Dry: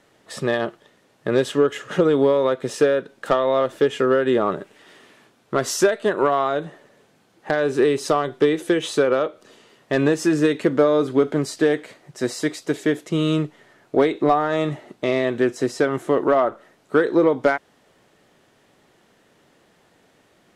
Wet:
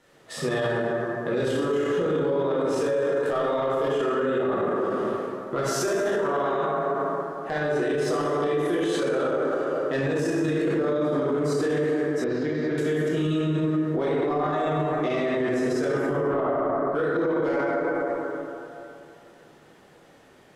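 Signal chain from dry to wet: 16.01–16.95 tone controls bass +7 dB, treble -13 dB; plate-style reverb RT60 2.7 s, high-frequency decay 0.4×, DRR -8.5 dB; limiter -12.5 dBFS, peak gain reduction 17.5 dB; 12.24–12.78 air absorption 270 m; gain -5 dB

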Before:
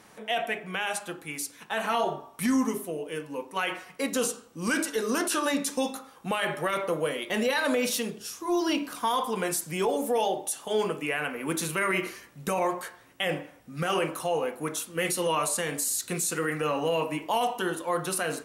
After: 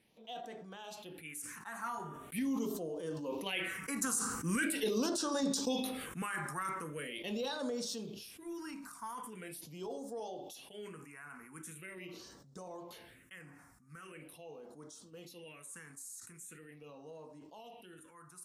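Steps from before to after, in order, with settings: Doppler pass-by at 4.61, 10 m/s, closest 4.5 m; LPF 10000 Hz 12 dB/oct; high shelf 5700 Hz +7.5 dB; compressor 5:1, threshold -35 dBFS, peak gain reduction 12 dB; phaser stages 4, 0.42 Hz, lowest notch 510–2400 Hz; sustainer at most 37 dB/s; gain +5 dB

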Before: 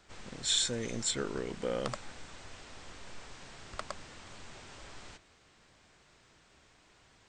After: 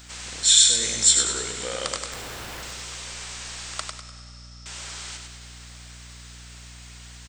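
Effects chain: tilt +4.5 dB/oct; in parallel at +1 dB: compressor 4:1, threshold -48 dBFS, peak gain reduction 26.5 dB; 2.12–2.63 on the sum: Schmitt trigger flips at -40 dBFS; 3.9–4.66 band-pass 5300 Hz, Q 19; hum 60 Hz, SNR 20 dB; 0.74–1.42 doubler 18 ms -5 dB; feedback echo 99 ms, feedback 40%, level -5 dB; on a send at -13 dB: reverb RT60 4.3 s, pre-delay 95 ms; on the sum: gain +2.5 dB

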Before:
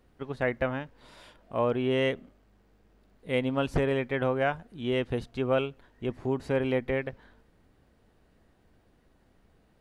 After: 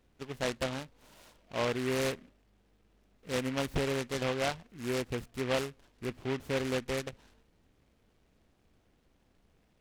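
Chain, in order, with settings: noise-modulated delay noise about 1800 Hz, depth 0.13 ms; gain -5 dB

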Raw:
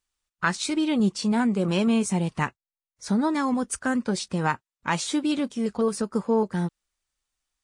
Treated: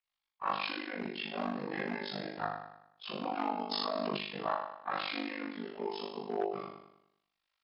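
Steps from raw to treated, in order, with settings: inharmonic rescaling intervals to 83%; recorder AGC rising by 7.4 dB/s; flutter echo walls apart 4.3 m, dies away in 0.81 s; hard clip -14 dBFS, distortion -20 dB; three-band isolator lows -15 dB, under 420 Hz, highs -24 dB, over 4400 Hz; AM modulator 50 Hz, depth 90%; high shelf 6700 Hz +7 dB; 3.71–4.17 fast leveller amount 100%; gain -5 dB

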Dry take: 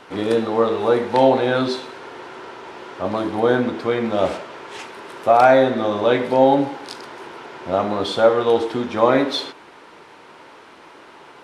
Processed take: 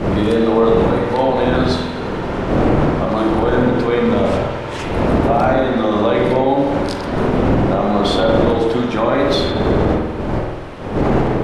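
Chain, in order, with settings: wind noise 460 Hz -19 dBFS; compressor 2:1, threshold -18 dBFS, peak gain reduction 9 dB; limiter -13 dBFS, peak gain reduction 8.5 dB; spring tank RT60 1.3 s, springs 48 ms, chirp 40 ms, DRR 1.5 dB; gain +5 dB

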